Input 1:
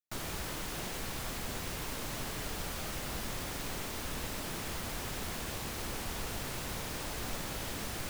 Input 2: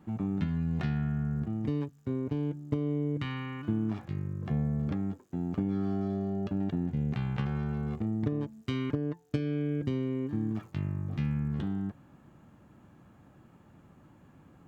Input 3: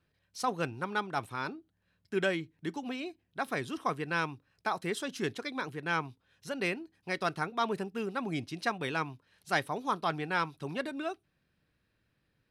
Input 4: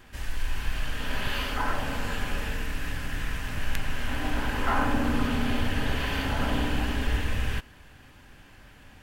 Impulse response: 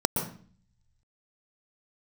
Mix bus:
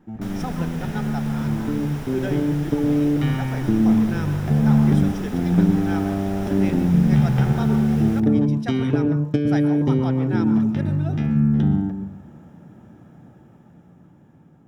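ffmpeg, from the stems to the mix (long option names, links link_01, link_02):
-filter_complex "[0:a]acrossover=split=2800[link_01][link_02];[link_02]acompressor=threshold=-49dB:ratio=4:attack=1:release=60[link_03];[link_01][link_03]amix=inputs=2:normalize=0,adelay=100,volume=1dB,asplit=2[link_04][link_05];[link_05]volume=-17.5dB[link_06];[1:a]dynaudnorm=framelen=820:gausssize=5:maxgain=9dB,volume=-5dB,asplit=2[link_07][link_08];[link_08]volume=-12dB[link_09];[2:a]volume=-8.5dB,asplit=2[link_10][link_11];[link_11]volume=-9.5dB[link_12];[3:a]lowpass=1400,volume=-11dB[link_13];[4:a]atrim=start_sample=2205[link_14];[link_06][link_09][link_12]amix=inputs=3:normalize=0[link_15];[link_15][link_14]afir=irnorm=-1:irlink=0[link_16];[link_04][link_07][link_10][link_13][link_16]amix=inputs=5:normalize=0"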